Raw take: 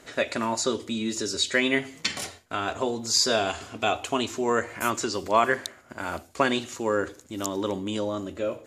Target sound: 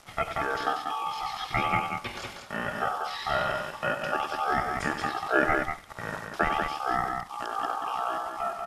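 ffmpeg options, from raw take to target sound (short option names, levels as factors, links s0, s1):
-filter_complex "[0:a]acrossover=split=2600[s0][s1];[s1]acompressor=threshold=0.0178:ratio=4:attack=1:release=60[s2];[s0][s2]amix=inputs=2:normalize=0,acrusher=bits=7:mix=0:aa=0.000001,aeval=exprs='val(0)*sin(2*PI*1700*n/s)':c=same,asetrate=26222,aresample=44100,atempo=1.68179,aecho=1:1:96.21|189.5:0.316|0.562"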